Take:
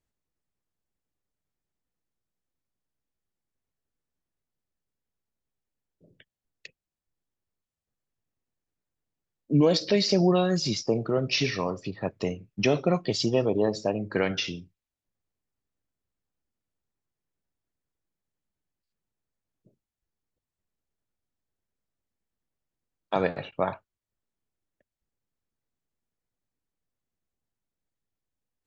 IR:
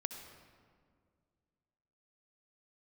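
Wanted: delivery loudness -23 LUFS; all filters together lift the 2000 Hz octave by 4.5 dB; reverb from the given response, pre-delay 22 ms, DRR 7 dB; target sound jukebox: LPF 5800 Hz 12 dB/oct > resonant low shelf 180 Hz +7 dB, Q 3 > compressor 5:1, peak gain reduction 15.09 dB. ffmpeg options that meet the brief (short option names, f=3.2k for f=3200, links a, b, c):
-filter_complex "[0:a]equalizer=f=2k:t=o:g=6,asplit=2[a][b];[1:a]atrim=start_sample=2205,adelay=22[c];[b][c]afir=irnorm=-1:irlink=0,volume=-6.5dB[d];[a][d]amix=inputs=2:normalize=0,lowpass=5.8k,lowshelf=f=180:t=q:w=3:g=7,acompressor=threshold=-24dB:ratio=5,volume=6dB"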